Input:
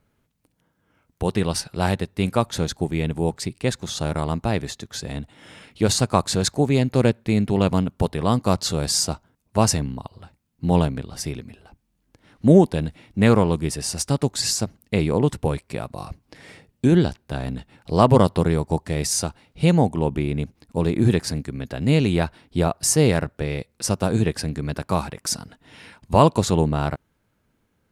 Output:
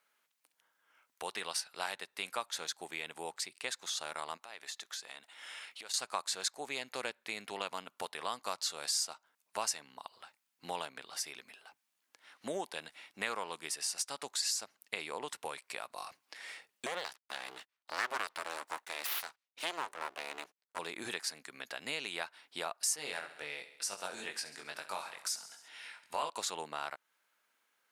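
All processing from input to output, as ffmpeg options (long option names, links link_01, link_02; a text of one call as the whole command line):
ffmpeg -i in.wav -filter_complex "[0:a]asettb=1/sr,asplit=3[link_01][link_02][link_03];[link_01]atrim=end=4.374[link_04];[link_02]atrim=start=4.37:end=5.94,asetpts=PTS-STARTPTS,afade=type=in:duration=0.004:curve=qsin,afade=type=out:start_time=1.566:duration=0.004:curve=qsin,lowshelf=frequency=230:gain=-9.5,acompressor=threshold=-36dB:ratio=6:attack=3.2:release=140:knee=1:detection=peak[link_05];[link_03]atrim=start=5.936[link_06];[link_04][link_05]acrossfade=duration=0.004:curve1=hsin:curve2=qsin[link_07];[link_07][link_06]acrossfade=duration=0.004:curve1=qsin:curve2=hsin,asettb=1/sr,asplit=3[link_08][link_09][link_10];[link_08]atrim=end=16.864[link_11];[link_09]atrim=start=16.86:end=20.79,asetpts=PTS-STARTPTS,afade=type=in:duration=0.004:curve=qsin,afade=type=out:start_time=3.926:duration=0.004:curve=qsin,agate=range=-30dB:threshold=-45dB:ratio=16:release=100:detection=peak,aeval=exprs='abs(val(0))':channel_layout=same[link_12];[link_10]atrim=start=20.786[link_13];[link_11][link_12]acrossfade=duration=0.004:curve1=hsin:curve2=qsin[link_14];[link_14][link_13]acrossfade=duration=0.004:curve1=qsin:curve2=hsin,asettb=1/sr,asplit=3[link_15][link_16][link_17];[link_15]atrim=end=22.964[link_18];[link_16]atrim=start=22.96:end=26.3,asetpts=PTS-STARTPTS,afade=type=in:duration=0.004:curve=qsin,afade=type=out:start_time=3.336:duration=0.004:curve=qsin,flanger=delay=20:depth=2.9:speed=2.1,bandreject=frequency=1100:width=19,aecho=1:1:67|134|201|268|335:0.178|0.0996|0.0558|0.0312|0.0175,atrim=end_sample=147294[link_19];[link_17]atrim=start=26.296[link_20];[link_18][link_19]acrossfade=duration=0.004:curve1=hsin:curve2=qsin[link_21];[link_21][link_20]acrossfade=duration=0.004:curve1=qsin:curve2=hsin,highpass=1100,acompressor=threshold=-40dB:ratio=2" out.wav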